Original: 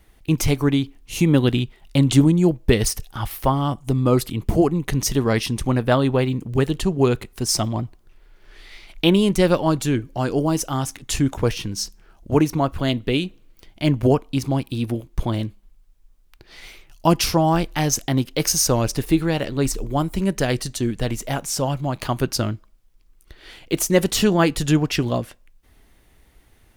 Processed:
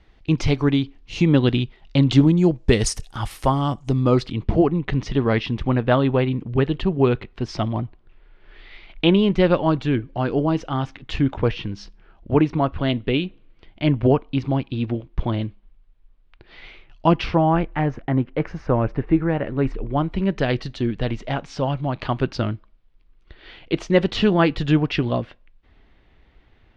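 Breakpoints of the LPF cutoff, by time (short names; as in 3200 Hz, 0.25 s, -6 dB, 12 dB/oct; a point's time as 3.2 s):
LPF 24 dB/oct
2.26 s 4900 Hz
2.96 s 9400 Hz
3.47 s 9400 Hz
4.64 s 3500 Hz
17.06 s 3500 Hz
17.86 s 2000 Hz
19.37 s 2000 Hz
20.32 s 3800 Hz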